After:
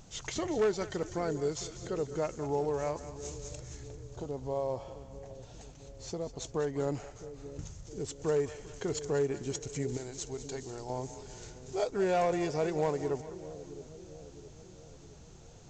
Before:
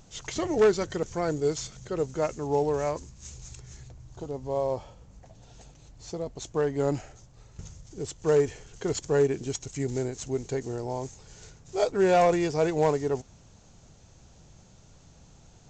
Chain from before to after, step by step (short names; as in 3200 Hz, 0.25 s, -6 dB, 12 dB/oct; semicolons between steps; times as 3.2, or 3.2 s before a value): 9.97–10.9 ten-band EQ 125 Hz -8 dB, 250 Hz -8 dB, 500 Hz -7 dB, 2000 Hz -5 dB, 4000 Hz +3 dB; compressor 1.5:1, threshold -39 dBFS, peak gain reduction 8 dB; split-band echo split 530 Hz, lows 0.663 s, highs 0.198 s, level -13 dB